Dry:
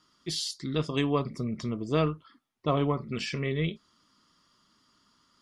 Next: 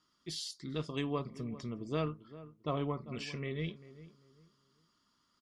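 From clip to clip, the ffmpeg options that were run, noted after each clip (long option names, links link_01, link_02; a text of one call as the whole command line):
ffmpeg -i in.wav -filter_complex "[0:a]asplit=2[link_01][link_02];[link_02]adelay=395,lowpass=frequency=1200:poles=1,volume=-15.5dB,asplit=2[link_03][link_04];[link_04]adelay=395,lowpass=frequency=1200:poles=1,volume=0.29,asplit=2[link_05][link_06];[link_06]adelay=395,lowpass=frequency=1200:poles=1,volume=0.29[link_07];[link_01][link_03][link_05][link_07]amix=inputs=4:normalize=0,volume=-8.5dB" out.wav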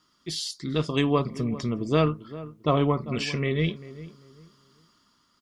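ffmpeg -i in.wav -af "dynaudnorm=framelen=150:gausssize=9:maxgain=4dB,volume=8.5dB" out.wav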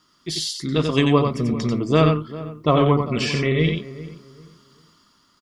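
ffmpeg -i in.wav -af "aecho=1:1:90:0.562,volume=5dB" out.wav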